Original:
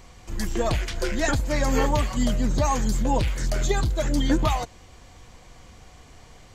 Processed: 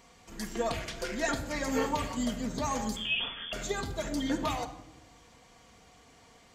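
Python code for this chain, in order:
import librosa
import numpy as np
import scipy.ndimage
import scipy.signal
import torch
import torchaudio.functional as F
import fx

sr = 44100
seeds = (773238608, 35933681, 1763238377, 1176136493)

y = fx.highpass(x, sr, hz=220.0, slope=6)
y = fx.freq_invert(y, sr, carrier_hz=3400, at=(2.96, 3.53))
y = fx.room_shoebox(y, sr, seeds[0], volume_m3=2800.0, walls='furnished', distance_m=1.7)
y = F.gain(torch.from_numpy(y), -7.0).numpy()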